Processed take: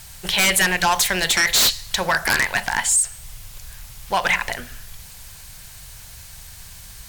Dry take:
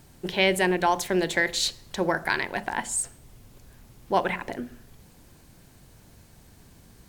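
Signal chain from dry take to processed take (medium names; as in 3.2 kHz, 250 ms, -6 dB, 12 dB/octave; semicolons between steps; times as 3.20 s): amplifier tone stack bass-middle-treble 10-0-10; 2.68–4.24 s: compression 3:1, threshold -33 dBFS, peak gain reduction 7.5 dB; sine folder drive 15 dB, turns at -12 dBFS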